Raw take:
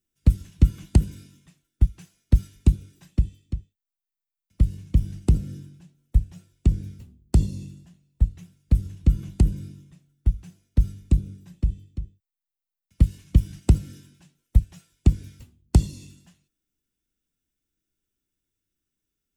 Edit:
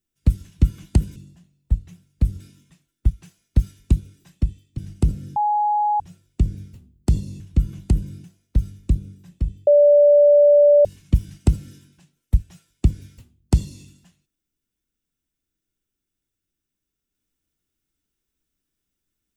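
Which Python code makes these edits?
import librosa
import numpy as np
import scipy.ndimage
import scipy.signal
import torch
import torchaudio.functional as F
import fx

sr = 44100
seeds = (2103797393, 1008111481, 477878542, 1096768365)

y = fx.edit(x, sr, fx.cut(start_s=3.54, length_s=1.5),
    fx.bleep(start_s=5.62, length_s=0.64, hz=836.0, db=-16.5),
    fx.move(start_s=7.66, length_s=1.24, to_s=1.16),
    fx.cut(start_s=9.74, length_s=0.72),
    fx.bleep(start_s=11.89, length_s=1.18, hz=583.0, db=-9.0), tone=tone)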